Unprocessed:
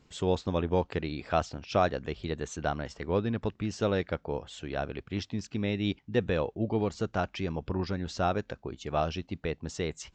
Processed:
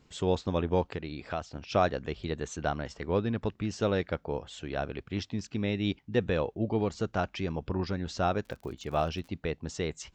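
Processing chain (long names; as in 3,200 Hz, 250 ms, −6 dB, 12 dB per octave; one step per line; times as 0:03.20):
0:00.86–0:01.55: downward compressor 2 to 1, threshold −36 dBFS, peak gain reduction 8.5 dB
0:08.42–0:09.30: surface crackle 81 per second −42 dBFS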